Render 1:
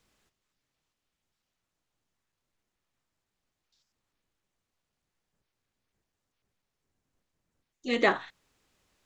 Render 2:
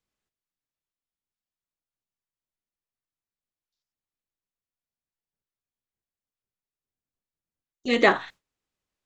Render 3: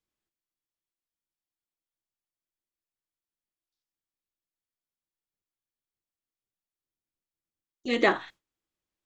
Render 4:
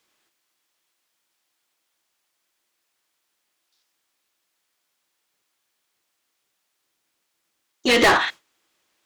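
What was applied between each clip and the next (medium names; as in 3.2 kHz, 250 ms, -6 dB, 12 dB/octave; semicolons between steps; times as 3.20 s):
gate with hold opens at -37 dBFS; trim +5.5 dB
small resonant body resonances 330/3300 Hz, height 9 dB, ringing for 90 ms; trim -4.5 dB
overdrive pedal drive 29 dB, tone 6.9 kHz, clips at -8 dBFS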